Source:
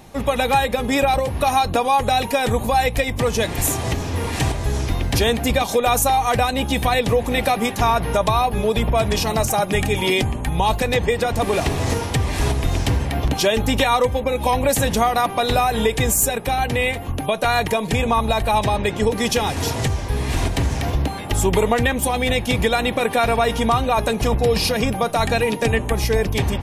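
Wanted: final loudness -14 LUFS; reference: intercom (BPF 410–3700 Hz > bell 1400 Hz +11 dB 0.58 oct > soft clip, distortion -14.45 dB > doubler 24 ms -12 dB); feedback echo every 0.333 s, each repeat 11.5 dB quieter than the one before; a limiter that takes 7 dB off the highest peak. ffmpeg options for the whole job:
-filter_complex "[0:a]alimiter=limit=-12dB:level=0:latency=1,highpass=410,lowpass=3.7k,equalizer=f=1.4k:t=o:w=0.58:g=11,aecho=1:1:333|666|999:0.266|0.0718|0.0194,asoftclip=threshold=-15dB,asplit=2[a][b];[b]adelay=24,volume=-12dB[c];[a][c]amix=inputs=2:normalize=0,volume=9.5dB"

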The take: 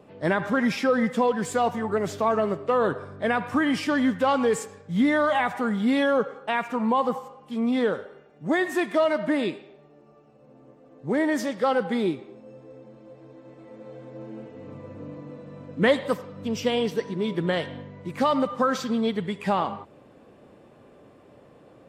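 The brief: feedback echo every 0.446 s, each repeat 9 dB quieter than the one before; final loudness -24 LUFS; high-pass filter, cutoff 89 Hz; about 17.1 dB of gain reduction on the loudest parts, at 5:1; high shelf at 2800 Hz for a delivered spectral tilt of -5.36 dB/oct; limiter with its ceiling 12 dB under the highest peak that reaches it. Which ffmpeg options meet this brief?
-af "highpass=89,highshelf=f=2.8k:g=-4.5,acompressor=threshold=-36dB:ratio=5,alimiter=level_in=11.5dB:limit=-24dB:level=0:latency=1,volume=-11.5dB,aecho=1:1:446|892|1338|1784:0.355|0.124|0.0435|0.0152,volume=20dB"

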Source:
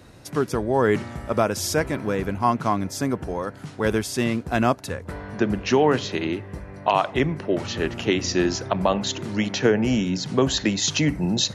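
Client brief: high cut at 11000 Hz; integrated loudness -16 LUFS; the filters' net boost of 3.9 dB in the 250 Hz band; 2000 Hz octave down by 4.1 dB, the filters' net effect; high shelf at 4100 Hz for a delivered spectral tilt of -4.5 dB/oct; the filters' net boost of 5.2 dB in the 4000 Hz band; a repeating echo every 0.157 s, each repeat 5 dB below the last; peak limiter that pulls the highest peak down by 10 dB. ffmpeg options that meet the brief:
-af "lowpass=11k,equalizer=f=250:t=o:g=5,equalizer=f=2k:t=o:g=-8.5,equalizer=f=4k:t=o:g=5.5,highshelf=f=4.1k:g=5,alimiter=limit=-13.5dB:level=0:latency=1,aecho=1:1:157|314|471|628|785|942|1099:0.562|0.315|0.176|0.0988|0.0553|0.031|0.0173,volume=6.5dB"

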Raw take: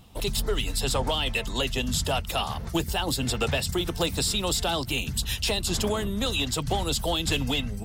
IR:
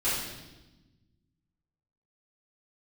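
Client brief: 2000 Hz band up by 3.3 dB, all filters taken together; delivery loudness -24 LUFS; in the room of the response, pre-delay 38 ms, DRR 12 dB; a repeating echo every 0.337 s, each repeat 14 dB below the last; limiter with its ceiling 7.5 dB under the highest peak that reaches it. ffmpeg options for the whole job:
-filter_complex "[0:a]equalizer=f=2k:t=o:g=5,alimiter=limit=-21dB:level=0:latency=1,aecho=1:1:337|674:0.2|0.0399,asplit=2[a][b];[1:a]atrim=start_sample=2205,adelay=38[c];[b][c]afir=irnorm=-1:irlink=0,volume=-22dB[d];[a][d]amix=inputs=2:normalize=0,volume=5.5dB"

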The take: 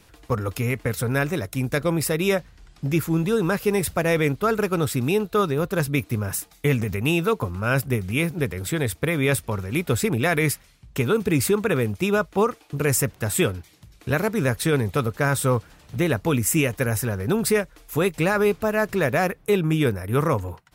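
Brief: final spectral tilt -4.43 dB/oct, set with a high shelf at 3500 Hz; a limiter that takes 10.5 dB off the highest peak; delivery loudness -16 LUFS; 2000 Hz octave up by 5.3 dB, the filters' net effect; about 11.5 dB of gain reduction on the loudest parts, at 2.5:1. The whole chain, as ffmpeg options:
-af "equalizer=f=2k:t=o:g=4.5,highshelf=f=3.5k:g=7.5,acompressor=threshold=-32dB:ratio=2.5,volume=16.5dB,alimiter=limit=-5dB:level=0:latency=1"

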